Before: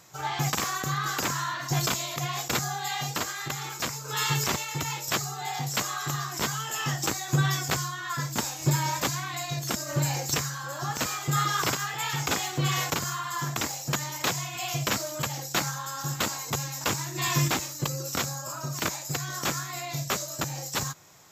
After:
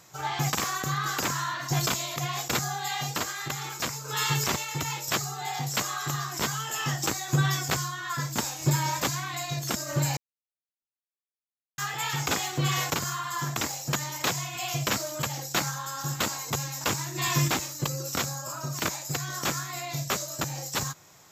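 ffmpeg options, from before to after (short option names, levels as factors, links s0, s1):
-filter_complex "[0:a]asplit=3[s0][s1][s2];[s0]atrim=end=10.17,asetpts=PTS-STARTPTS,afade=t=out:st=10.166:d=0.004:c=hsin[s3];[s1]atrim=start=10.17:end=11.78,asetpts=PTS-STARTPTS,volume=0[s4];[s2]atrim=start=11.78,asetpts=PTS-STARTPTS,afade=t=in:d=0.004:c=hsin[s5];[s3][s4][s5]concat=n=3:v=0:a=1"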